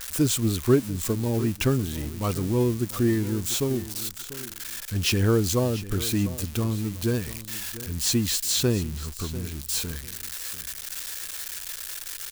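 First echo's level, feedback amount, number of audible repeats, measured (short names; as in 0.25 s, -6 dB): -15.5 dB, 19%, 2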